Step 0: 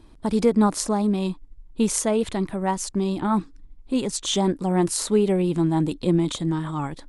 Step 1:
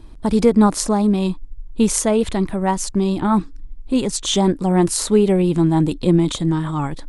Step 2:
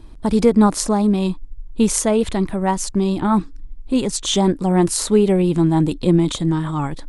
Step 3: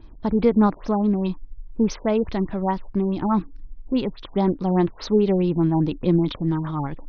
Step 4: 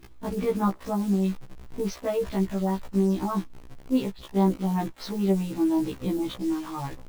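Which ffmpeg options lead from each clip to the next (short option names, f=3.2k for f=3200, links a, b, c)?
-af "lowshelf=f=79:g=8.5,volume=4.5dB"
-af anull
-af "afftfilt=real='re*lt(b*sr/1024,950*pow(6600/950,0.5+0.5*sin(2*PI*4.8*pts/sr)))':imag='im*lt(b*sr/1024,950*pow(6600/950,0.5+0.5*sin(2*PI*4.8*pts/sr)))':win_size=1024:overlap=0.75,volume=-4dB"
-af "acrusher=bits=7:dc=4:mix=0:aa=0.000001,afftfilt=real='re*1.73*eq(mod(b,3),0)':imag='im*1.73*eq(mod(b,3),0)':win_size=2048:overlap=0.75,volume=-2.5dB"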